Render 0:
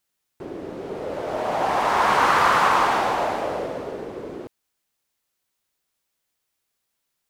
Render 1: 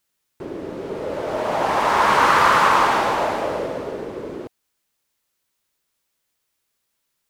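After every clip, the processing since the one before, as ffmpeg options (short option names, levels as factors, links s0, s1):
-af "bandreject=f=740:w=12,volume=1.41"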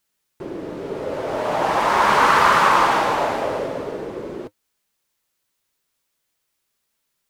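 -af "flanger=delay=4.4:depth=3.4:regen=-63:speed=0.43:shape=triangular,volume=1.68"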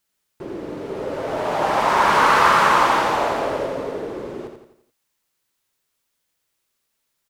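-af "aecho=1:1:86|172|258|344|430:0.473|0.218|0.1|0.0461|0.0212,volume=0.891"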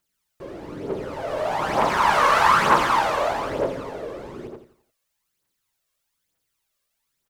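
-af "aphaser=in_gain=1:out_gain=1:delay=1.9:decay=0.55:speed=1.1:type=triangular,volume=0.631"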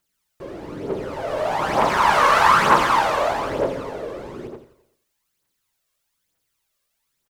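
-af "aecho=1:1:128|256|384:0.0841|0.0412|0.0202,volume=1.26"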